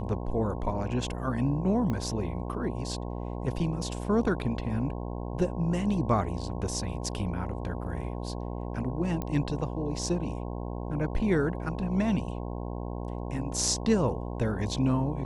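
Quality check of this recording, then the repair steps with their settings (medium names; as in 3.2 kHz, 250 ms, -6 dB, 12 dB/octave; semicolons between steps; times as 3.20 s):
buzz 60 Hz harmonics 18 -35 dBFS
1.90 s: pop -20 dBFS
9.22 s: pop -19 dBFS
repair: de-click; de-hum 60 Hz, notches 18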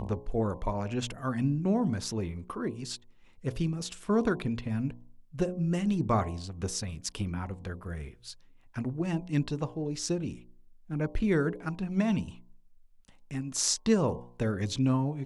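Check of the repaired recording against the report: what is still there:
1.90 s: pop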